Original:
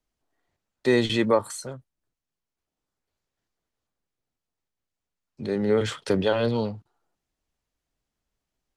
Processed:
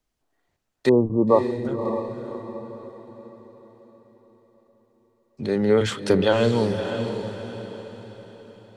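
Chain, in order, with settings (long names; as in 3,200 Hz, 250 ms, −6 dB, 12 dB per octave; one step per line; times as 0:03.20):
0:00.89–0:01.65: linear-phase brick-wall low-pass 1,200 Hz
feedback delay with all-pass diffusion 576 ms, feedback 43%, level −7.5 dB
level +3.5 dB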